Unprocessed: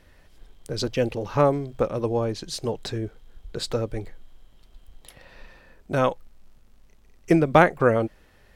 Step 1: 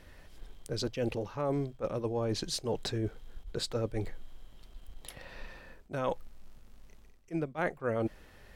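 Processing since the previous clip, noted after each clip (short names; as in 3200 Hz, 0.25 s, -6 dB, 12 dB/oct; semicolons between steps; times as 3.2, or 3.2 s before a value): reverse; compressor 10:1, threshold -30 dBFS, peak gain reduction 20.5 dB; reverse; attack slew limiter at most 390 dB/s; gain +1 dB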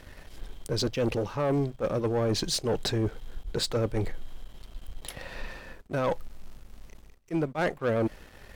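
sample leveller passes 2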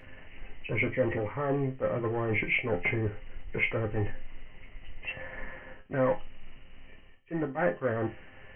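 nonlinear frequency compression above 1700 Hz 4:1; resonator bank F2 minor, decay 0.23 s; gain +9 dB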